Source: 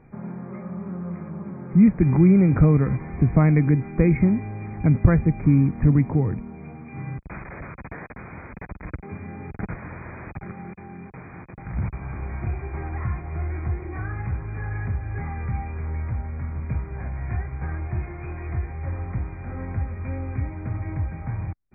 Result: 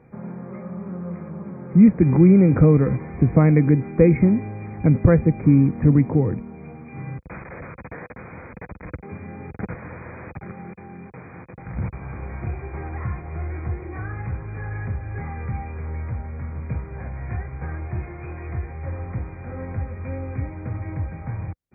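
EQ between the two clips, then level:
high-pass filter 60 Hz
dynamic equaliser 320 Hz, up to +4 dB, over −31 dBFS, Q 0.87
parametric band 500 Hz +8.5 dB 0.21 octaves
0.0 dB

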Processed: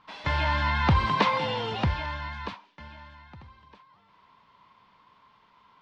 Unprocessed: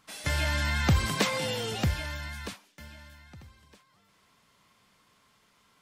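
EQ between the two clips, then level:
low-pass filter 4,100 Hz 24 dB per octave
parametric band 970 Hz +14.5 dB 0.37 octaves
+1.0 dB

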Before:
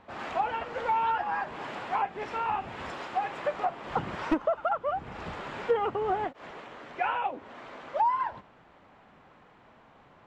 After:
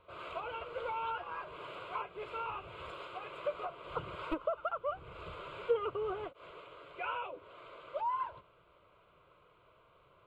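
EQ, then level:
phaser with its sweep stopped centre 1,200 Hz, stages 8
−4.5 dB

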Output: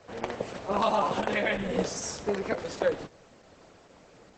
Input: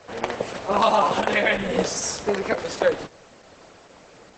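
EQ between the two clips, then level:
low-shelf EQ 450 Hz +5.5 dB
−8.5 dB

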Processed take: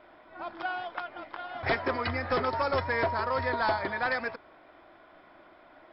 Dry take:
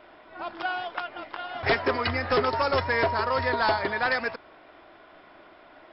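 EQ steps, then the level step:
high-shelf EQ 4,000 Hz −7.5 dB
notch filter 420 Hz, Q 12
notch filter 2,800 Hz, Q 15
−3.0 dB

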